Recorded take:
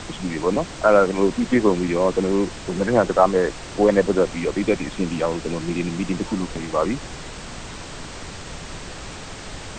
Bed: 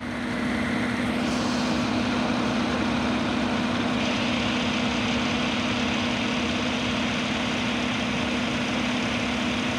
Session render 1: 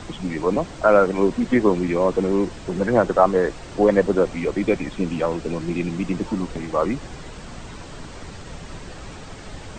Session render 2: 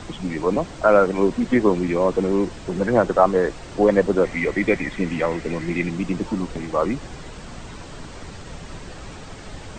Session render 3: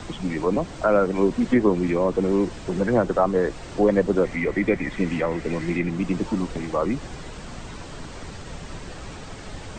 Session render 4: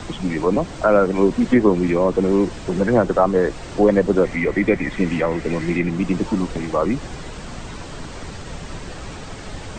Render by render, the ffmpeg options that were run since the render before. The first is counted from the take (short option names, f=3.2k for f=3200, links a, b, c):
-af "afftdn=nr=7:nf=-36"
-filter_complex "[0:a]asettb=1/sr,asplit=3[a][b][c];[a]atrim=end=4.234[d];[b]atrim=start=4.23:end=5.9,asetpts=PTS-STARTPTS,afade=t=in:d=0.004:c=qsin,afade=t=out:st=1.666:d=0.004:c=qsin,equalizer=f=2k:w=4.7:g=14.5[e];[c]atrim=start=5.896[f];[d][e]acrossfade=d=0.004:c1=hsin:c2=qsin[g];[g][f]acrossfade=d=0.004:c1=qsin:c2=hsin"
-filter_complex "[0:a]acrossover=split=370[a][b];[b]acompressor=threshold=-27dB:ratio=1.5[c];[a][c]amix=inputs=2:normalize=0,acrossover=split=2400[d][e];[e]alimiter=level_in=7.5dB:limit=-24dB:level=0:latency=1:release=396,volume=-7.5dB[f];[d][f]amix=inputs=2:normalize=0"
-af "volume=4dB,alimiter=limit=-3dB:level=0:latency=1"